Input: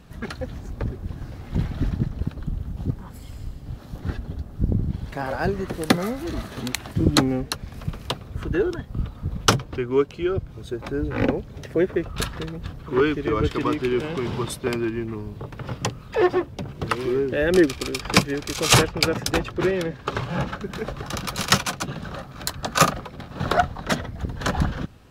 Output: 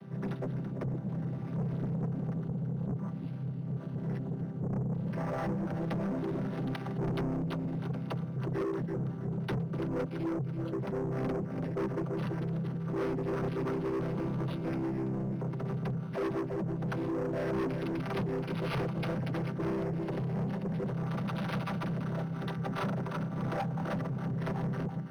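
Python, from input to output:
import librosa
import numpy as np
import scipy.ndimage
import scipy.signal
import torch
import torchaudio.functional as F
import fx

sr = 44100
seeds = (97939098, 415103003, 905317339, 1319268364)

p1 = fx.chord_vocoder(x, sr, chord='major triad', root=48)
p2 = fx.echo_feedback(p1, sr, ms=333, feedback_pct=40, wet_db=-15)
p3 = fx.over_compress(p2, sr, threshold_db=-34.0, ratio=-1.0)
p4 = p2 + (p3 * librosa.db_to_amplitude(-2.5))
p5 = fx.peak_eq(p4, sr, hz=1300.0, db=-13.0, octaves=0.44, at=(19.97, 20.91))
p6 = 10.0 ** (-26.5 / 20.0) * np.tanh(p5 / 10.0 ** (-26.5 / 20.0))
p7 = np.interp(np.arange(len(p6)), np.arange(len(p6))[::6], p6[::6])
y = p7 * librosa.db_to_amplitude(-3.0)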